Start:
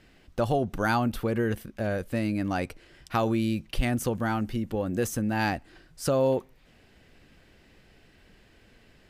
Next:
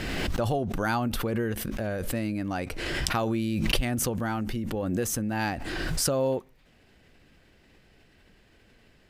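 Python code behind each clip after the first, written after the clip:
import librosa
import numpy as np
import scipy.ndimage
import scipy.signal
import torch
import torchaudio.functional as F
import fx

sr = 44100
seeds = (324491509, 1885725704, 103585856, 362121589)

y = fx.pre_swell(x, sr, db_per_s=21.0)
y = y * 10.0 ** (-2.5 / 20.0)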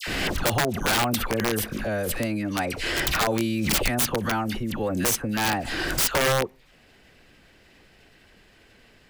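y = fx.low_shelf(x, sr, hz=380.0, db=-6.0)
y = fx.dispersion(y, sr, late='lows', ms=74.0, hz=1400.0)
y = (np.mod(10.0 ** (22.0 / 20.0) * y + 1.0, 2.0) - 1.0) / 10.0 ** (22.0 / 20.0)
y = y * 10.0 ** (6.5 / 20.0)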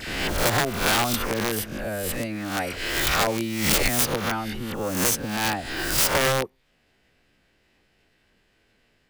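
y = fx.spec_swells(x, sr, rise_s=0.66)
y = fx.upward_expand(y, sr, threshold_db=-42.0, expansion=1.5)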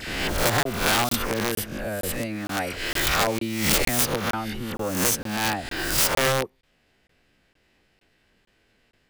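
y = fx.buffer_crackle(x, sr, first_s=0.63, period_s=0.46, block=1024, kind='zero')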